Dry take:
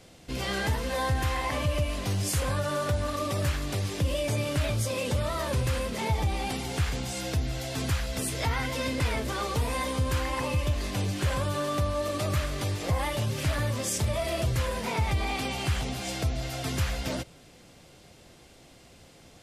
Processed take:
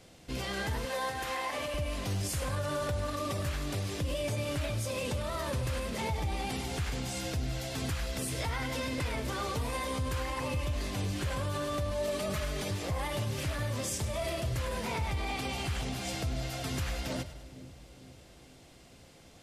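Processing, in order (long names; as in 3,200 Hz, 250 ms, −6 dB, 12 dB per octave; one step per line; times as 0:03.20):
0:00.85–0:01.74: high-pass filter 350 Hz 12 dB per octave
0:11.91–0:12.71: comb filter 4.7 ms, depth 97%
brickwall limiter −22.5 dBFS, peak gain reduction 6 dB
echo with a time of its own for lows and highs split 490 Hz, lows 455 ms, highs 101 ms, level −13 dB
level −3 dB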